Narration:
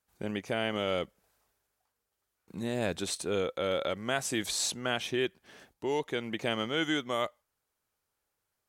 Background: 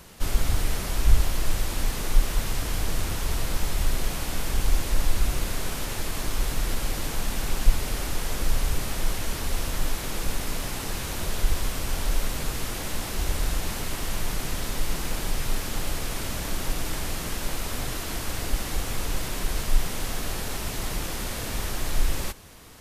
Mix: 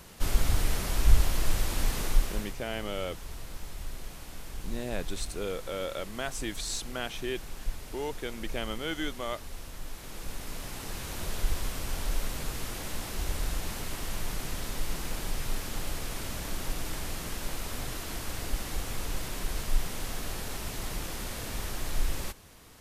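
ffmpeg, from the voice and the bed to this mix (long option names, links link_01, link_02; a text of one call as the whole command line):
ffmpeg -i stem1.wav -i stem2.wav -filter_complex "[0:a]adelay=2100,volume=-4dB[link_01];[1:a]volume=7dB,afade=type=out:start_time=2.01:duration=0.55:silence=0.237137,afade=type=in:start_time=9.84:duration=1.44:silence=0.354813[link_02];[link_01][link_02]amix=inputs=2:normalize=0" out.wav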